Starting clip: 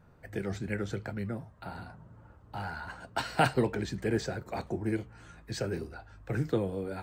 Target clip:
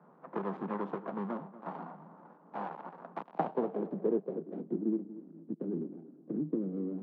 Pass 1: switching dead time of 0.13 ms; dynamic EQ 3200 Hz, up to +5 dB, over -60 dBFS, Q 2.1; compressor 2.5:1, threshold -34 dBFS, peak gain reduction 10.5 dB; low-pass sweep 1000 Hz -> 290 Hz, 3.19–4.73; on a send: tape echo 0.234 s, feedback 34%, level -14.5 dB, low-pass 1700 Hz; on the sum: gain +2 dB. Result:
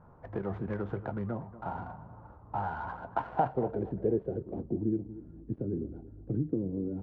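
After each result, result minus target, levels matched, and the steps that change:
125 Hz band +7.0 dB; switching dead time: distortion -10 dB
add after compressor: steep high-pass 160 Hz 72 dB/oct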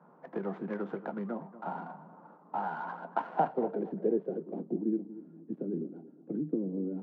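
switching dead time: distortion -10 dB
change: switching dead time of 0.47 ms

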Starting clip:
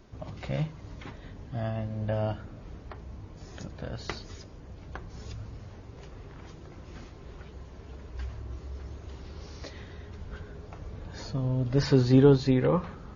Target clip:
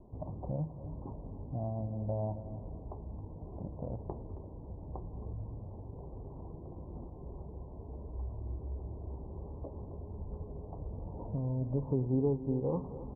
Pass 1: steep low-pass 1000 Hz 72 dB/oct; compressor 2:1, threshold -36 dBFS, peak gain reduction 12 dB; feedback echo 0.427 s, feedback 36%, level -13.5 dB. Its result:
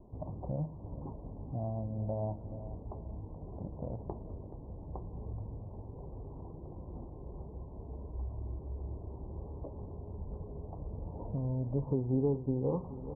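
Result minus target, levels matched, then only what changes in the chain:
echo 0.157 s late
change: feedback echo 0.27 s, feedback 36%, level -13.5 dB

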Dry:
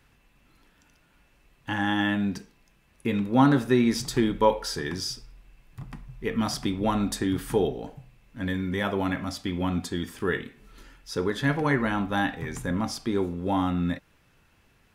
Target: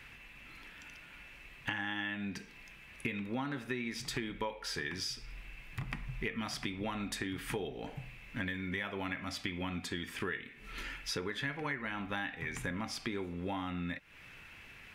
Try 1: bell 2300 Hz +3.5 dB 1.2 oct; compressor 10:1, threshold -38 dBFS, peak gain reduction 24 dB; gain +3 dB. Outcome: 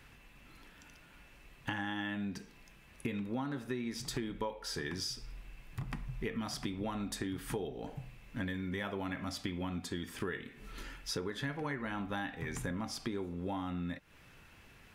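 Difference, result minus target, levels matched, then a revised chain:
2000 Hz band -4.0 dB
bell 2300 Hz +14 dB 1.2 oct; compressor 10:1, threshold -38 dBFS, peak gain reduction 25 dB; gain +3 dB

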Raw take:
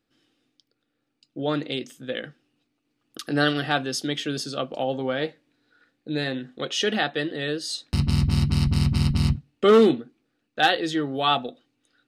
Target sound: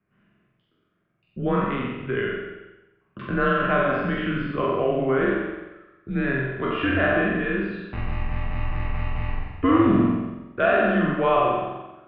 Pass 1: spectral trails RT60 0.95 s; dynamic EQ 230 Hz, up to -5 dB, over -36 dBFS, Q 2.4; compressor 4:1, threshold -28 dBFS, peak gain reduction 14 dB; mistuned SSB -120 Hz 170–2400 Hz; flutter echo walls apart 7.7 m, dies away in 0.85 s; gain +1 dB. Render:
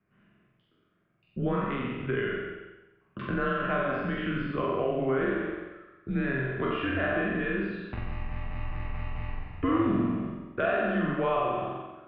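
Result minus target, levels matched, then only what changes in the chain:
compressor: peak gain reduction +8 dB
change: compressor 4:1, threshold -17.5 dBFS, peak gain reduction 6.5 dB

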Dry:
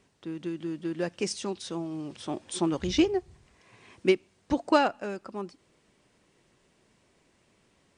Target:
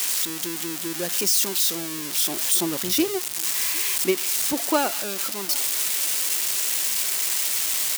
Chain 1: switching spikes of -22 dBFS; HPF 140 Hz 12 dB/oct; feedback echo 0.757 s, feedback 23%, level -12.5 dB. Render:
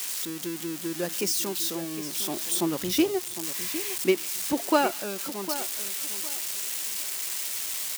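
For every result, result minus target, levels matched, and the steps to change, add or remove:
echo-to-direct +11.5 dB; switching spikes: distortion -8 dB
change: feedback echo 0.757 s, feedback 23%, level -24 dB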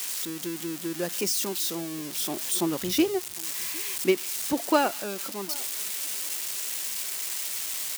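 switching spikes: distortion -8 dB
change: switching spikes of -14 dBFS

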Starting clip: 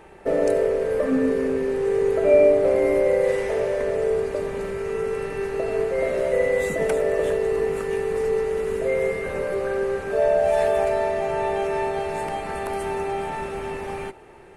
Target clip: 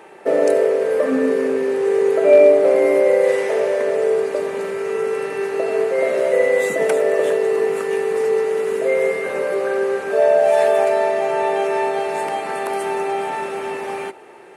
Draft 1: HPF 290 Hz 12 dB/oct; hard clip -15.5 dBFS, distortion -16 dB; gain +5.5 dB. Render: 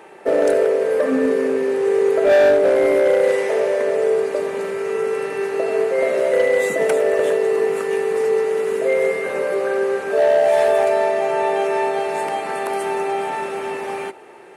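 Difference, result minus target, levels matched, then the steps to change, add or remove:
hard clip: distortion +25 dB
change: hard clip -8.5 dBFS, distortion -42 dB

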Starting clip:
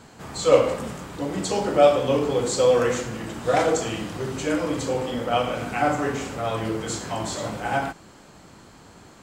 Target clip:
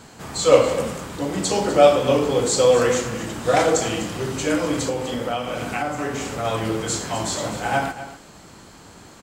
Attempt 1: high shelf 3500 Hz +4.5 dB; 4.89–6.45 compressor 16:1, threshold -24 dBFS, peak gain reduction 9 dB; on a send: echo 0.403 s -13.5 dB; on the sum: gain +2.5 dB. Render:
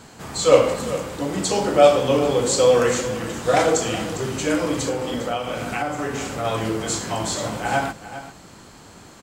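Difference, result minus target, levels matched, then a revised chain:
echo 0.154 s late
high shelf 3500 Hz +4.5 dB; 4.89–6.45 compressor 16:1, threshold -24 dBFS, peak gain reduction 9 dB; on a send: echo 0.249 s -13.5 dB; on the sum: gain +2.5 dB

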